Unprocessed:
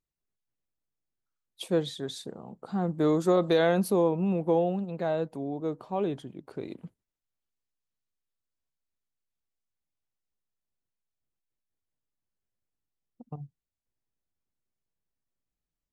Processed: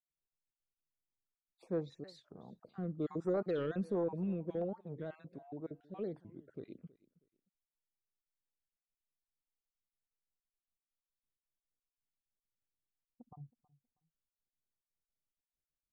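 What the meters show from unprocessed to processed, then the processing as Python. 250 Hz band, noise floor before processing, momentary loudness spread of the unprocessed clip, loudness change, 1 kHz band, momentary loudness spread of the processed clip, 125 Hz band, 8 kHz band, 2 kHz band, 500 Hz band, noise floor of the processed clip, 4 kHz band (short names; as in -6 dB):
-11.0 dB, under -85 dBFS, 20 LU, -11.5 dB, -17.0 dB, 20 LU, -10.0 dB, under -25 dB, -16.5 dB, -12.0 dB, under -85 dBFS, under -20 dB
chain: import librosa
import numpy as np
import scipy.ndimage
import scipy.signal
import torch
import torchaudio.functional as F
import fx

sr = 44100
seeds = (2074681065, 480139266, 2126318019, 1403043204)

p1 = fx.spec_dropout(x, sr, seeds[0], share_pct=28)
p2 = 10.0 ** (-15.0 / 20.0) * np.tanh(p1 / 10.0 ** (-15.0 / 20.0))
p3 = fx.filter_lfo_notch(p2, sr, shape='square', hz=1.3, low_hz=870.0, high_hz=3100.0, q=1.1)
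p4 = fx.spacing_loss(p3, sr, db_at_10k=23)
p5 = p4 + fx.echo_feedback(p4, sr, ms=320, feedback_pct=25, wet_db=-21.5, dry=0)
p6 = fx.record_warp(p5, sr, rpm=45.0, depth_cents=250.0)
y = F.gain(torch.from_numpy(p6), -8.0).numpy()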